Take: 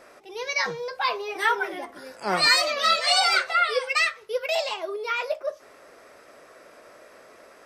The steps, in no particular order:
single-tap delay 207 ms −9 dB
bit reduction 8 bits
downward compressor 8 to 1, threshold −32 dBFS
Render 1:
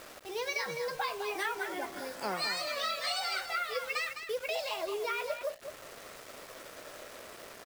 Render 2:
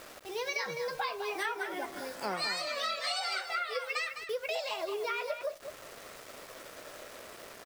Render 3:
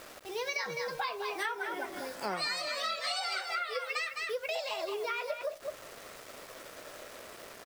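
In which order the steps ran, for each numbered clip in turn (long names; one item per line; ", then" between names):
downward compressor, then bit reduction, then single-tap delay
bit reduction, then downward compressor, then single-tap delay
bit reduction, then single-tap delay, then downward compressor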